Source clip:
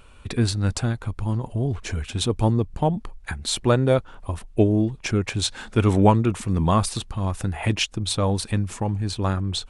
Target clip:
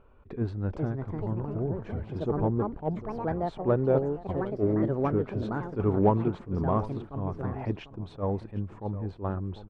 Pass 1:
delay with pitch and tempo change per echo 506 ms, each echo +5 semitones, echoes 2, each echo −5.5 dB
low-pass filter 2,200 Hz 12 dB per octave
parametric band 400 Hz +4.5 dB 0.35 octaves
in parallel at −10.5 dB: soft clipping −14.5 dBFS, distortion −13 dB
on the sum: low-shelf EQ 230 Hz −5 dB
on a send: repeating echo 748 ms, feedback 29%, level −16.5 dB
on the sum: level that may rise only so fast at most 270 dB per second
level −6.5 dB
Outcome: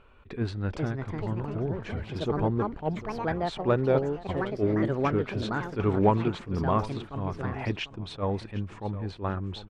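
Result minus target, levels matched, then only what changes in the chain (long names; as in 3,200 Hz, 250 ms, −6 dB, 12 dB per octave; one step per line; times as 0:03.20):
2,000 Hz band +8.0 dB
change: low-pass filter 960 Hz 12 dB per octave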